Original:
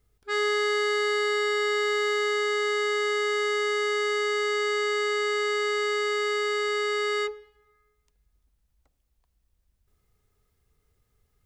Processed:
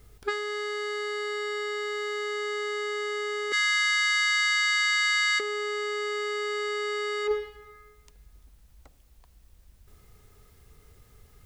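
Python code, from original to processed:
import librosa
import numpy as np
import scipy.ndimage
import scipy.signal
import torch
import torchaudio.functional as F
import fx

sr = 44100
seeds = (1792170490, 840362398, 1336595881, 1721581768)

y = fx.cheby_ripple_highpass(x, sr, hz=1300.0, ripple_db=3, at=(3.52, 5.4))
y = fx.over_compress(y, sr, threshold_db=-36.0, ratio=-1.0)
y = y * 10.0 ** (7.0 / 20.0)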